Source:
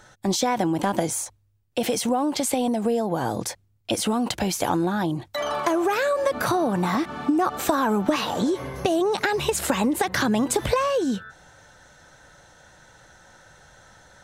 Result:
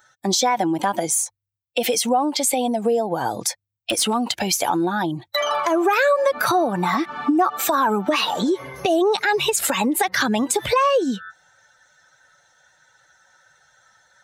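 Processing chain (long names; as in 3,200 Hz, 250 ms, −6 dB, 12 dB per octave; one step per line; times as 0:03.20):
spectral dynamics exaggerated over time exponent 1.5
high-pass filter 560 Hz 6 dB per octave
in parallel at −0.5 dB: downward compressor 6 to 1, threshold −36 dBFS, peak gain reduction 14 dB
0:03.48–0:04.14: on the sum: hard clipping −22 dBFS, distortion −29 dB
boost into a limiter +16 dB
level −8 dB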